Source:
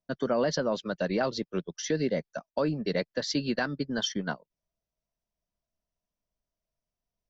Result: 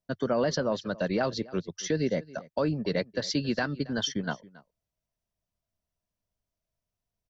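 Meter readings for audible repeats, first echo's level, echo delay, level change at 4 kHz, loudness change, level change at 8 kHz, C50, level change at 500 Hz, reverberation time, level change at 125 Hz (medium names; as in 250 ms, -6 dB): 1, -21.0 dB, 275 ms, 0.0 dB, +0.5 dB, no reading, no reverb, 0.0 dB, no reverb, +2.5 dB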